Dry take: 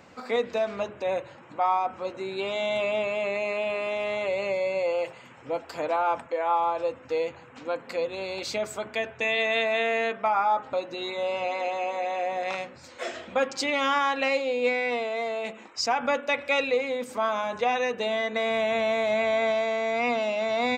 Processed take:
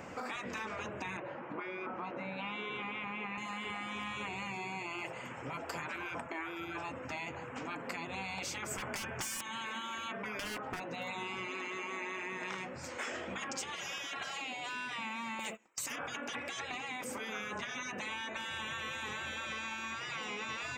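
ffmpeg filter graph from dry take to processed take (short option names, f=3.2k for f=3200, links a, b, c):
-filter_complex "[0:a]asettb=1/sr,asplit=3[a][b][c];[a]atrim=end=1.174[d];[b]atrim=start=1.17:end=3.38,asetpts=PTS-STARTPTS,afade=t=in:d=0.004:c=qsin,afade=t=out:st=2.206:d=0.004:c=qsin,highpass=180,lowpass=4.2k,aemphasis=mode=reproduction:type=75fm[e];[c]atrim=start=3.376[f];[d][e]acrossfade=d=0.004:c1=hsin:c2=qsin[g];[g][f]acrossfade=d=0.004:c1=qsin:c2=hsin,asettb=1/sr,asplit=3[h][i][j];[h]atrim=end=8.714[k];[i]atrim=start=8.71:end=9.41,asetpts=PTS-STARTPTS,afade=t=in:d=0.004:c=qsin,afade=t=out:st=0.696:d=0.004:c=qsin,acontrast=33,bandreject=f=3.9k:w=5,aeval=exprs='0.0891*(abs(mod(val(0)/0.0891+3,4)-2)-1)':c=same[l];[j]atrim=start=9.406[m];[k][l]acrossfade=d=0.004:c1=hsin:c2=qsin[n];[n][m]acrossfade=d=0.004:c1=qsin:c2=hsin,asettb=1/sr,asplit=3[o][p][q];[o]atrim=end=10.394[r];[p]atrim=start=10.39:end=11.08,asetpts=PTS-STARTPTS,afade=t=in:d=0.004:c=qsin,afade=t=out:st=0.686:d=0.004:c=qsin,highshelf=f=4.4k:g=-7.5,aeval=exprs='0.0531*(abs(mod(val(0)/0.0531+3,4)-2)-1)':c=same[s];[q]atrim=start=11.076[t];[r][s]acrossfade=d=0.004:c1=hsin:c2=qsin[u];[u][t]acrossfade=d=0.004:c1=qsin:c2=hsin,asettb=1/sr,asplit=3[v][w][x];[v]atrim=end=15.394[y];[w]atrim=start=15.39:end=15.96,asetpts=PTS-STARTPTS,afade=t=in:d=0.004:c=qsin,afade=t=out:st=0.566:d=0.004:c=qsin,agate=range=-28dB:threshold=-43dB:ratio=16:release=100:detection=peak,aemphasis=mode=production:type=75fm[z];[x]atrim=start=15.956[aa];[y][z]acrossfade=d=0.004:c1=hsin:c2=qsin[ab];[ab][aa]acrossfade=d=0.004:c1=qsin:c2=hsin,afftfilt=real='re*lt(hypot(re,im),0.0708)':imag='im*lt(hypot(re,im),0.0708)':win_size=1024:overlap=0.75,equalizer=f=4k:t=o:w=0.47:g=-11.5,acompressor=threshold=-43dB:ratio=4,volume=5.5dB"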